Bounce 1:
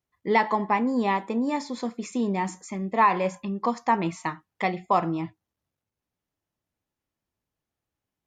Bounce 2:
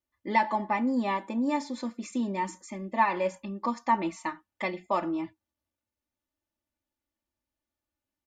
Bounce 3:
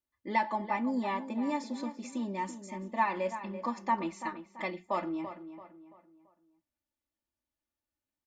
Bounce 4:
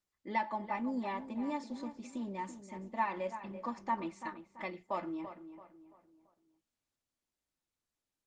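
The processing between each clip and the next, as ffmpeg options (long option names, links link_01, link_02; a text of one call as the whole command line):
ffmpeg -i in.wav -af "aecho=1:1:3.4:0.84,volume=-6dB" out.wav
ffmpeg -i in.wav -filter_complex "[0:a]asplit=2[link_01][link_02];[link_02]adelay=336,lowpass=frequency=2800:poles=1,volume=-11dB,asplit=2[link_03][link_04];[link_04]adelay=336,lowpass=frequency=2800:poles=1,volume=0.4,asplit=2[link_05][link_06];[link_06]adelay=336,lowpass=frequency=2800:poles=1,volume=0.4,asplit=2[link_07][link_08];[link_08]adelay=336,lowpass=frequency=2800:poles=1,volume=0.4[link_09];[link_01][link_03][link_05][link_07][link_09]amix=inputs=5:normalize=0,volume=-4.5dB" out.wav
ffmpeg -i in.wav -af "volume=-4.5dB" -ar 48000 -c:a libopus -b:a 20k out.opus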